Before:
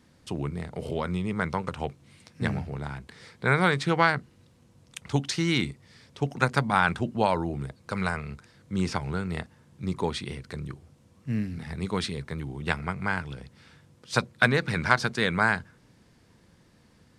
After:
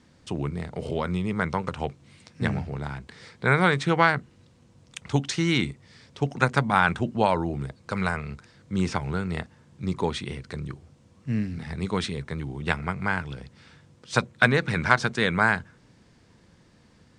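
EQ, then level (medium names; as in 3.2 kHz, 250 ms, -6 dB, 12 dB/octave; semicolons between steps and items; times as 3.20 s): low-pass 8.9 kHz 24 dB/octave; dynamic bell 4.7 kHz, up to -5 dB, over -52 dBFS, Q 3.7; +2.0 dB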